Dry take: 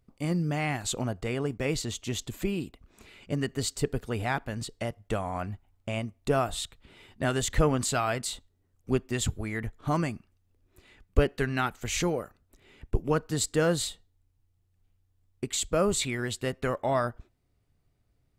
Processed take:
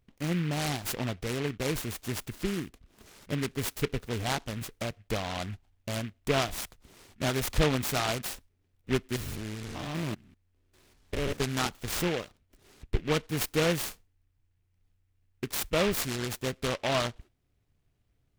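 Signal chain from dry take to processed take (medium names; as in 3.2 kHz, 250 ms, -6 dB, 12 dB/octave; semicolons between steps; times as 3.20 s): 9.16–11.40 s: spectrogram pixelated in time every 200 ms; delay time shaken by noise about 2 kHz, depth 0.14 ms; trim -1.5 dB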